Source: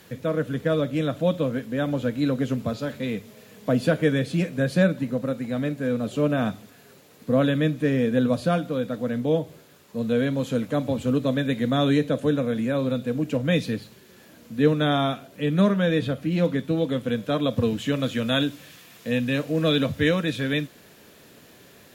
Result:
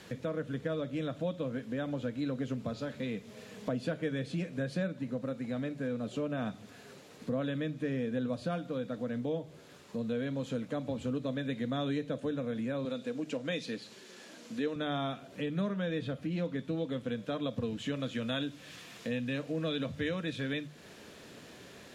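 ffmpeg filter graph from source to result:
-filter_complex "[0:a]asettb=1/sr,asplit=3[a][b][c];[a]atrim=end=12.854[d];[b]atrim=start=12.85:end=14.76,asetpts=PTS-STARTPTS,afade=t=in:d=0.004:c=qsin,afade=t=out:st=1.906:d=0.004:c=qsin,highpass=240,lowpass=6.7k,aemphasis=mode=production:type=50fm[e];[c]atrim=start=14.756[f];[d][e]acrossfade=d=0.004:c1=hsin:c2=qsin[g];[g][f]acrossfade=d=0.004:c1=qsin:c2=hsin,acompressor=threshold=-37dB:ratio=2.5,lowpass=8k,bandreject=f=50:t=h:w=6,bandreject=f=100:t=h:w=6,bandreject=f=150:t=h:w=6"

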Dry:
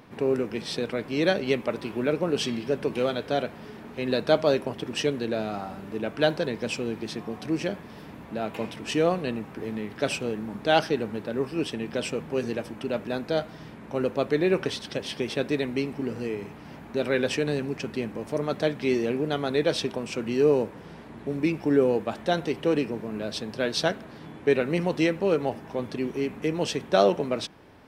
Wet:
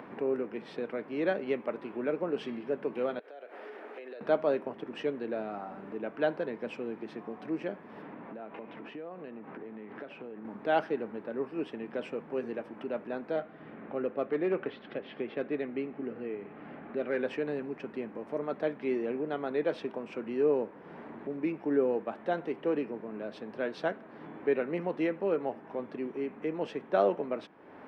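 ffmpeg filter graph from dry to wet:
-filter_complex "[0:a]asettb=1/sr,asplit=3[a][b][c];[a]atrim=end=3.194[d];[b]atrim=start=3.19:end=4.21,asetpts=PTS-STARTPTS,afade=t=in:d=0.004:c=qsin,afade=t=out:st=1.016:d=0.004:c=qsin,highpass=f=390:w=0.5412,highpass=f=390:w=1.3066,equalizer=f=1k:w=3.1:g=-7,acompressor=threshold=-41dB:ratio=8:attack=3.2:release=140:knee=1:detection=peak[e];[c]atrim=start=4.206[f];[d][e]acrossfade=d=0.004:c1=hsin:c2=qsin[g];[g][f]acrossfade=d=0.004:c1=qsin:c2=hsin,asettb=1/sr,asplit=3[h][i][j];[h]atrim=end=8.024[k];[i]atrim=start=8.02:end=10.45,asetpts=PTS-STARTPTS,afade=t=in:d=0.004:c=qsin,afade=t=out:st=2.426:d=0.004:c=qsin,acompressor=threshold=-38dB:ratio=4:attack=3.2:release=140:knee=1:detection=peak,highpass=100,lowpass=3.6k[l];[j]atrim=start=10.446[m];[k][l]acrossfade=d=0.004:c1=hsin:c2=qsin[n];[n][m]acrossfade=d=0.004:c1=qsin:c2=hsin,asettb=1/sr,asplit=3[o][p][q];[o]atrim=end=13.364[r];[p]atrim=start=13.36:end=17.17,asetpts=PTS-STARTPTS,afade=t=in:d=0.004:c=qsin,afade=t=out:st=3.806:d=0.004:c=qsin,lowpass=f=3.9k:w=0.5412,lowpass=f=3.9k:w=1.3066,bandreject=f=950:w=6.8,volume=16.5dB,asoftclip=hard,volume=-16.5dB[s];[q]atrim=start=17.166[t];[r][s]acrossfade=d=0.004:c1=hsin:c2=qsin[u];[u][t]acrossfade=d=0.004:c1=qsin:c2=hsin,acompressor=mode=upward:threshold=-29dB:ratio=2.5,acrossover=split=190 2400:gain=0.1 1 0.0631[v][w][x];[v][w][x]amix=inputs=3:normalize=0,volume=-5.5dB"

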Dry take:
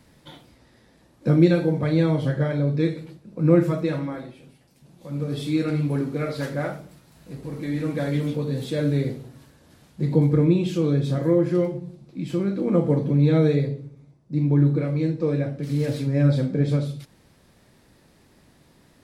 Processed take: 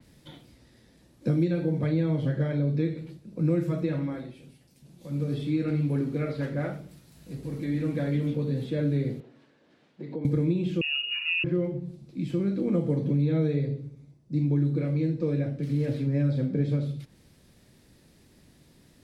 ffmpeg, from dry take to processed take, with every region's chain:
-filter_complex "[0:a]asettb=1/sr,asplit=3[a][b][c];[a]atrim=end=9.204[d];[b]atrim=start=9.2:end=10.25,asetpts=PTS-STARTPTS,afade=t=in:d=0.004:c=qsin,afade=t=out:st=1.046:d=0.004:c=qsin,acompressor=threshold=-25dB:ratio=2.5:attack=3.2:release=140:knee=1:detection=peak,highpass=330,lowpass=2.6k[e];[c]atrim=start=10.246[f];[d][e]acrossfade=d=0.004:c1=hsin:c2=qsin[g];[g][f]acrossfade=d=0.004:c1=qsin:c2=hsin,asettb=1/sr,asplit=3[h][i][j];[h]atrim=end=10.814[k];[i]atrim=start=10.81:end=11.44,asetpts=PTS-STARTPTS,afade=t=in:d=0.004:c=qsin,afade=t=out:st=0.626:d=0.004:c=qsin,equalizer=f=2.1k:t=o:w=2.1:g=-4,lowpass=f=2.6k:t=q:w=0.5098,lowpass=f=2.6k:t=q:w=0.6013,lowpass=f=2.6k:t=q:w=0.9,lowpass=f=2.6k:t=q:w=2.563,afreqshift=-3000[l];[j]atrim=start=11.436[m];[k][l]acrossfade=d=0.004:c1=hsin:c2=qsin[n];[n][m]acrossfade=d=0.004:c1=qsin:c2=hsin,equalizer=f=990:t=o:w=1.9:g=-8,acrossover=split=120|2900[o][p][q];[o]acompressor=threshold=-38dB:ratio=4[r];[p]acompressor=threshold=-23dB:ratio=4[s];[q]acompressor=threshold=-56dB:ratio=4[t];[r][s][t]amix=inputs=3:normalize=0,adynamicequalizer=threshold=0.00141:dfrequency=4300:dqfactor=0.7:tfrequency=4300:tqfactor=0.7:attack=5:release=100:ratio=0.375:range=3:mode=cutabove:tftype=highshelf"

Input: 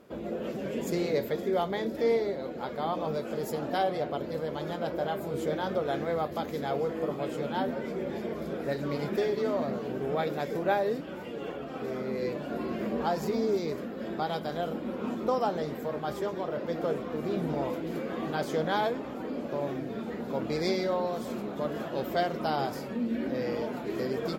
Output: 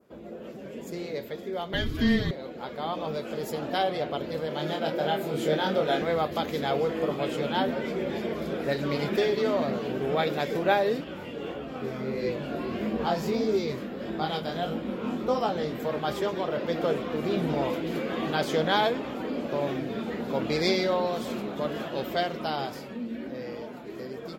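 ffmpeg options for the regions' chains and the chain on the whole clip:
-filter_complex "[0:a]asettb=1/sr,asplit=3[a][b][c];[a]atrim=end=1.734[d];[b]atrim=start=1.73:end=2.31,asetpts=PTS-STARTPTS,afade=t=in:d=0.004:c=qsin,afade=t=out:st=0.576:d=0.004:c=qsin,aecho=1:1:5.8:0.82,atrim=end_sample=25578,acontrast=71,afreqshift=-240[e];[c]atrim=start=2.306[f];[d][e]acrossfade=d=0.004:c1=hsin:c2=qsin[g];[g][f]acrossfade=d=0.004:c1=qsin:c2=hsin,asettb=1/sr,asplit=3[h][i][j];[h]atrim=end=4.484[k];[i]atrim=start=4.48:end=6.02,asetpts=PTS-STARTPTS,afade=t=in:d=0.004:c=qsin,afade=t=out:st=1.536:d=0.004:c=qsin,highpass=f=120:w=0.5412,highpass=f=120:w=1.3066,bandreject=f=1.1k:w=8.1,asplit=2[l][m];[m]adelay=26,volume=-4dB[n];[l][n]amix=inputs=2:normalize=0,atrim=end_sample=67914[o];[j]atrim=start=6.016[p];[k][o]acrossfade=d=0.004:c1=hsin:c2=qsin[q];[q][p]acrossfade=d=0.004:c1=qsin:c2=hsin,asettb=1/sr,asplit=3[r][s][t];[r]atrim=end=11.044[u];[s]atrim=start=11.04:end=15.8,asetpts=PTS-STARTPTS,afade=t=in:d=0.004:c=qsin,afade=t=out:st=4.756:d=0.004:c=qsin,lowshelf=f=150:g=7,flanger=delay=18:depth=6.6:speed=1.6[v];[t]atrim=start=15.796[w];[u][v]acrossfade=d=0.004:c1=hsin:c2=qsin[x];[x][w]acrossfade=d=0.004:c1=qsin:c2=hsin,dynaudnorm=f=400:g=13:m=10dB,adynamicequalizer=threshold=0.00708:dfrequency=3100:dqfactor=1:tfrequency=3100:tqfactor=1:attack=5:release=100:ratio=0.375:range=3.5:mode=boostabove:tftype=bell,volume=-6.5dB"

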